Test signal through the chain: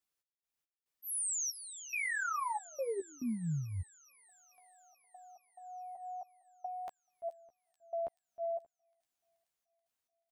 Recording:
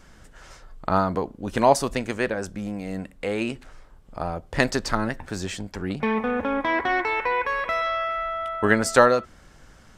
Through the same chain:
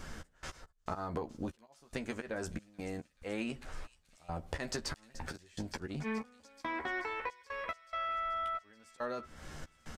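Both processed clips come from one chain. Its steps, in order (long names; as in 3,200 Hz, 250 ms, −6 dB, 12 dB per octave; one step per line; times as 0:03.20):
volume swells 281 ms
downward compressor 12 to 1, threshold −39 dBFS
gate pattern "x.x.xxx..xx" 70 BPM −24 dB
double-tracking delay 13 ms −6 dB
delay with a high-pass on its return 431 ms, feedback 71%, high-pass 4,300 Hz, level −12 dB
level +4 dB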